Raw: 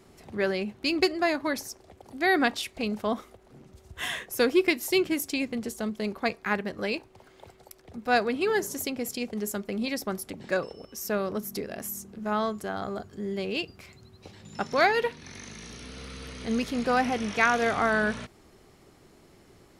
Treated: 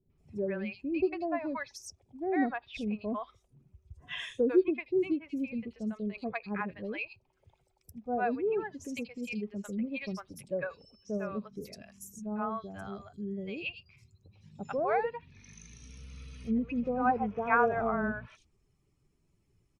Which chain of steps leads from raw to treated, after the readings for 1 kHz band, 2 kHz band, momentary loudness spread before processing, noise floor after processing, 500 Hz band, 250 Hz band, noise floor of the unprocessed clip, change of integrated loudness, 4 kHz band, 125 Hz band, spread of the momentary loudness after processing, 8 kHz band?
−4.5 dB, −9.5 dB, 16 LU, −73 dBFS, −4.5 dB, −3.5 dB, −57 dBFS, −5.0 dB, −14.5 dB, −3.5 dB, 18 LU, −14.5 dB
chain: spectral dynamics exaggerated over time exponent 1.5
parametric band 2,500 Hz +9.5 dB 0.2 octaves
three-band delay without the direct sound lows, mids, highs 100/180 ms, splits 650/4,100 Hz
gain on a spectral selection 0:17.05–0:17.91, 360–1,700 Hz +6 dB
treble cut that deepens with the level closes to 970 Hz, closed at −27.5 dBFS

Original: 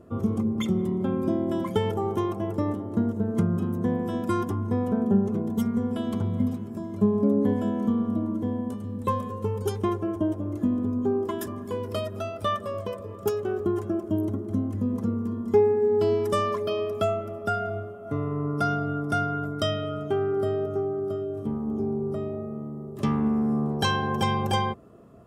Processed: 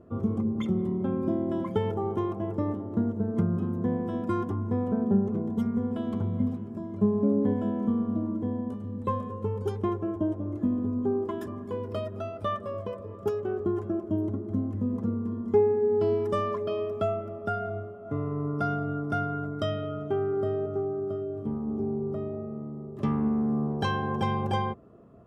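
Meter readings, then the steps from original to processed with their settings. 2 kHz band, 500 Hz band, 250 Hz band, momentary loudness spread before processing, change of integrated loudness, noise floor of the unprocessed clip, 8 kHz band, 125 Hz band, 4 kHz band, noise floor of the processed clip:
−5.0 dB, −2.5 dB, −2.0 dB, 8 LU, −2.5 dB, −38 dBFS, below −10 dB, −2.0 dB, −9.0 dB, −40 dBFS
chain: low-pass filter 1,600 Hz 6 dB per octave
level −2 dB

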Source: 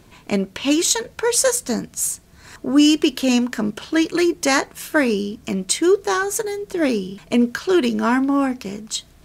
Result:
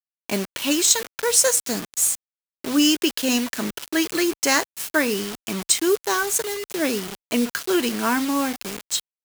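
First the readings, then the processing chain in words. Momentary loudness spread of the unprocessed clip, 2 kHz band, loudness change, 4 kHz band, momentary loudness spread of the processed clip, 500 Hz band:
9 LU, −1.0 dB, −2.0 dB, +1.0 dB, 10 LU, −4.5 dB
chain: bit reduction 5 bits
spectral tilt +1.5 dB per octave
level −2.5 dB

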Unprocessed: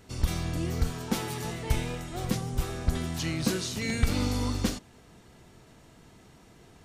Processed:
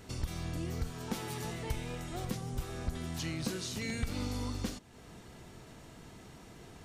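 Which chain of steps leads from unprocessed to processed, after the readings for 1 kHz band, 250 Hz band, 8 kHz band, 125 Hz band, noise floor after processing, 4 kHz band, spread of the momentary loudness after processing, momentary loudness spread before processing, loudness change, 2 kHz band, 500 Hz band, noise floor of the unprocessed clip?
−6.5 dB, −7.5 dB, −7.0 dB, −7.5 dB, −53 dBFS, −7.0 dB, 16 LU, 5 LU, −7.5 dB, −7.0 dB, −6.5 dB, −56 dBFS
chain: downward compressor 2 to 1, threshold −44 dBFS, peak gain reduction 14.5 dB
level +2.5 dB

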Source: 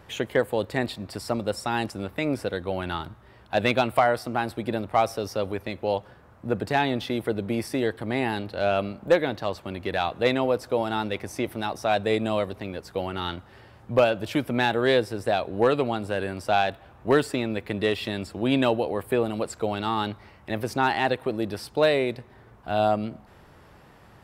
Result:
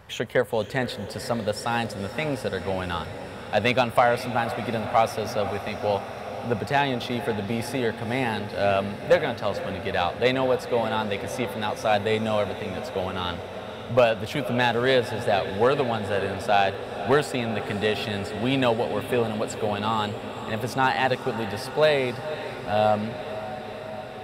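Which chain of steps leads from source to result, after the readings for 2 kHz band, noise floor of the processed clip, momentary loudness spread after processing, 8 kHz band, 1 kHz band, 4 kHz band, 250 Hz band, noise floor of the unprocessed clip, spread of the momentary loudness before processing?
+2.0 dB, −37 dBFS, 10 LU, +2.0 dB, +2.0 dB, +2.0 dB, −1.0 dB, −52 dBFS, 9 LU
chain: parametric band 320 Hz −15 dB 0.26 octaves
feedback delay with all-pass diffusion 510 ms, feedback 78%, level −12.5 dB
level +1.5 dB

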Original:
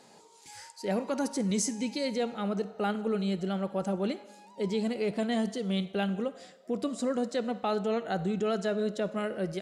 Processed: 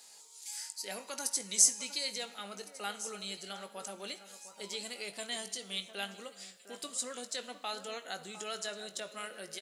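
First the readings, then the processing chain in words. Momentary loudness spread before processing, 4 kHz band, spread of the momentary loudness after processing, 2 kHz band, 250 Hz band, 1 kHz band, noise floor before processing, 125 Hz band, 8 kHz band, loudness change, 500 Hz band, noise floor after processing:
7 LU, +3.5 dB, 12 LU, −2.5 dB, −20.5 dB, −8.5 dB, −57 dBFS, below −20 dB, +8.5 dB, −4.5 dB, −14.0 dB, −57 dBFS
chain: first difference
double-tracking delay 20 ms −11 dB
delay that swaps between a low-pass and a high-pass 705 ms, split 1,900 Hz, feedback 53%, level −12.5 dB
level +8.5 dB

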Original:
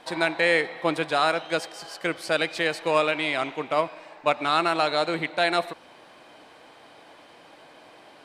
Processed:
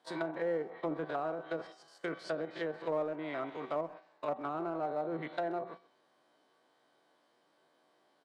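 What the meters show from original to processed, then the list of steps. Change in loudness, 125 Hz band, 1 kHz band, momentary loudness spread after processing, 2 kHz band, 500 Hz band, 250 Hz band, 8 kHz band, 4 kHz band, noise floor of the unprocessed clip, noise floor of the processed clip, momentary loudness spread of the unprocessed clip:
−13.0 dB, −9.5 dB, −13.5 dB, 7 LU, −19.5 dB, −10.0 dB, −8.5 dB, below −20 dB, −24.0 dB, −51 dBFS, −72 dBFS, 8 LU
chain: spectrum averaged block by block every 50 ms
mains-hum notches 60/120/180 Hz
noise gate −39 dBFS, range −12 dB
high-pass filter 130 Hz 24 dB per octave
parametric band 2,500 Hz −9.5 dB 0.44 octaves
notch filter 790 Hz, Q 13
tuned comb filter 380 Hz, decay 0.34 s, harmonics all, mix 70%
treble cut that deepens with the level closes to 730 Hz, closed at −32 dBFS
in parallel at −9 dB: gain into a clipping stage and back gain 34.5 dB
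on the sum: far-end echo of a speakerphone 130 ms, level −20 dB

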